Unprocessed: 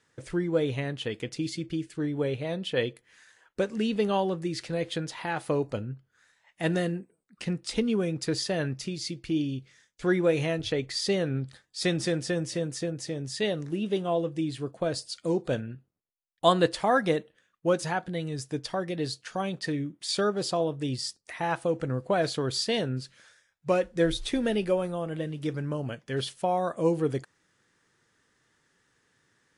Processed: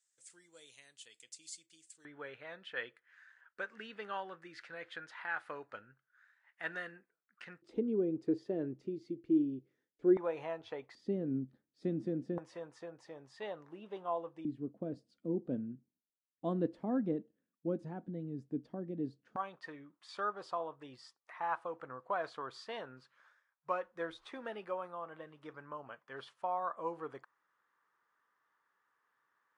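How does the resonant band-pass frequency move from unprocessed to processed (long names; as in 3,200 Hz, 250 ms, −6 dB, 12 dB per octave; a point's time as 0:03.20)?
resonant band-pass, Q 3.2
7,800 Hz
from 0:02.05 1,500 Hz
from 0:07.62 340 Hz
from 0:10.17 920 Hz
from 0:10.95 260 Hz
from 0:12.38 970 Hz
from 0:14.45 250 Hz
from 0:19.36 1,100 Hz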